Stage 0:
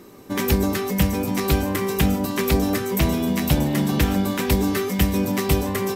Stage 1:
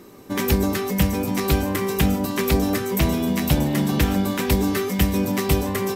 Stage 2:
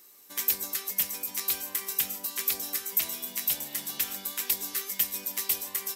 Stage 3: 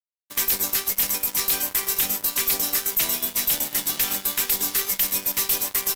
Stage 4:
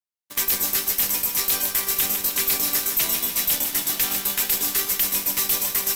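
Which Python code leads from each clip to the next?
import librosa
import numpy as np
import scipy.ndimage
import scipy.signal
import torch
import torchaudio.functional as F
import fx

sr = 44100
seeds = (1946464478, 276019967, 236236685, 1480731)

y1 = x
y2 = np.diff(y1, prepend=0.0)
y2 = fx.quant_dither(y2, sr, seeds[0], bits=12, dither='triangular')
y3 = fx.fuzz(y2, sr, gain_db=33.0, gate_db=-42.0)
y3 = F.gain(torch.from_numpy(y3), -4.0).numpy()
y4 = fx.echo_feedback(y3, sr, ms=153, feedback_pct=54, wet_db=-7.5)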